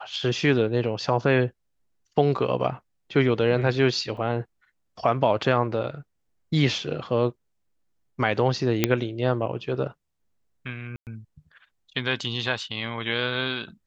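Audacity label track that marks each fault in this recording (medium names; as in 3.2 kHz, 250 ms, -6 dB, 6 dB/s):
4.170000	4.170000	dropout 2.9 ms
8.840000	8.840000	pop -4 dBFS
10.960000	11.070000	dropout 108 ms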